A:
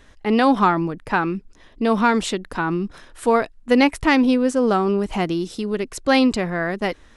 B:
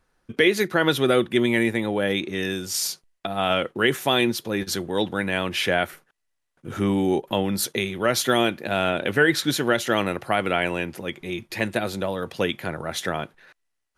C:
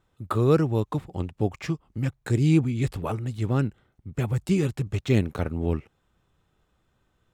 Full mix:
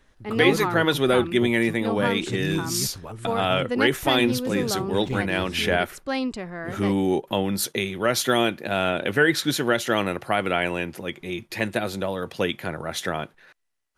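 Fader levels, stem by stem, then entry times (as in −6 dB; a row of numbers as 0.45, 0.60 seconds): −10.5, −0.5, −8.5 decibels; 0.00, 0.00, 0.00 seconds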